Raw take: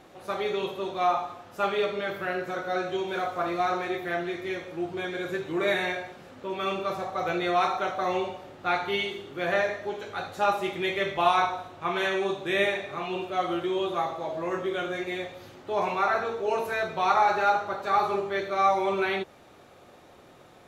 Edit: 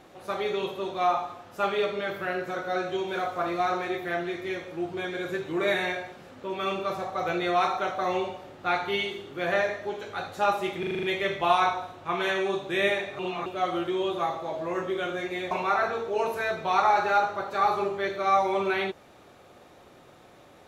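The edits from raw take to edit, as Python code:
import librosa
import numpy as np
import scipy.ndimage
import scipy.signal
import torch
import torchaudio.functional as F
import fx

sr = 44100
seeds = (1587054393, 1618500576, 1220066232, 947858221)

y = fx.edit(x, sr, fx.stutter(start_s=10.79, slice_s=0.04, count=7),
    fx.reverse_span(start_s=12.95, length_s=0.27),
    fx.cut(start_s=15.27, length_s=0.56), tone=tone)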